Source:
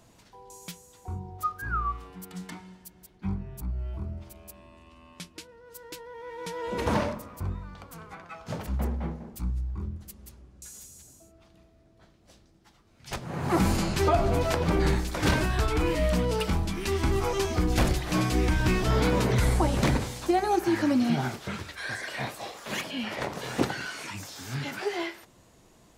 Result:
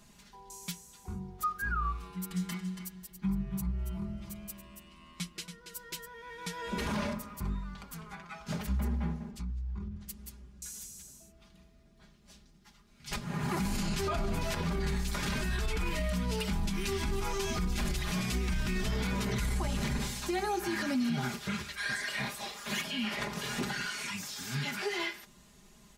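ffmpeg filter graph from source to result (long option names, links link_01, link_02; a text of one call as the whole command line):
ffmpeg -i in.wav -filter_complex "[0:a]asettb=1/sr,asplit=3[link_01][link_02][link_03];[link_01]atrim=end=2.024[link_04];[link_02]atrim=start=2.02:end=6.08,asetpts=PTS-STARTPTS,afade=type=in:duration=0.004:curve=qsin,afade=type=out:start_time=4.056:duration=0.004:curve=qsin,aecho=1:1:5.9:0.55,atrim=end_sample=179046,aecho=1:1:280:0.355,atrim=end_sample=179046[link_05];[link_03]atrim=start=6.076[link_06];[link_04][link_05]acrossfade=duration=0.004:curve1=hsin:curve2=qsin[link_07];[link_07][link_06]acrossfade=duration=0.004:curve1=qsin:curve2=hsin,asettb=1/sr,asplit=3[link_08][link_09][link_10];[link_08]atrim=end=9.314[link_11];[link_09]atrim=start=9.31:end=10.09,asetpts=PTS-STARTPTS,afade=type=in:duration=0.004:curve=qsin,afade=type=out:start_time=0.776:duration=0.004:curve=qsin,lowpass=5800,acompressor=threshold=-33dB:ratio=10:attack=3.2:release=140:knee=1:detection=peak[link_12];[link_10]atrim=start=10.086[link_13];[link_11][link_12]acrossfade=duration=0.004:curve1=hsin:curve2=qsin[link_14];[link_14][link_13]acrossfade=duration=0.004:curve1=qsin:curve2=hsin,equalizer=frequency=550:width_type=o:width=1.8:gain=-9.5,aecho=1:1:4.9:0.82,alimiter=limit=-24dB:level=0:latency=1:release=51" out.wav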